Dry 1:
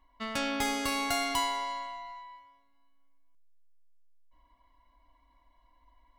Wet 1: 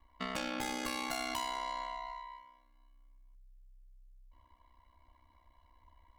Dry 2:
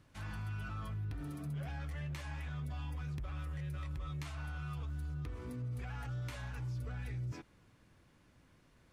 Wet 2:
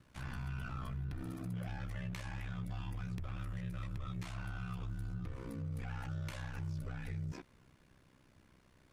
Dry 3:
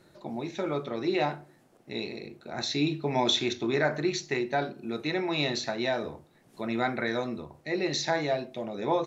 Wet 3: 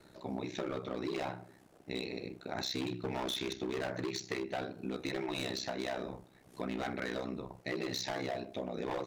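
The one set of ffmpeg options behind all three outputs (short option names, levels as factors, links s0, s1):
-af "asoftclip=type=hard:threshold=0.0473,aeval=exprs='val(0)*sin(2*PI*32*n/s)':c=same,acompressor=threshold=0.0141:ratio=6,volume=1.41"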